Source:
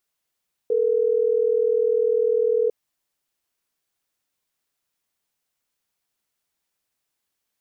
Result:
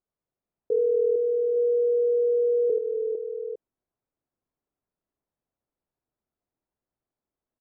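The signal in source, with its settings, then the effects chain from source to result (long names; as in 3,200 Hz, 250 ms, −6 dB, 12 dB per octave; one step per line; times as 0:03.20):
call progress tone ringback tone, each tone −20 dBFS
Bessel low-pass filter 570 Hz, order 2
on a send: multi-tap delay 83/157/243/453/456/856 ms −5.5/−19.5/−13.5/−6/−7.5/−10.5 dB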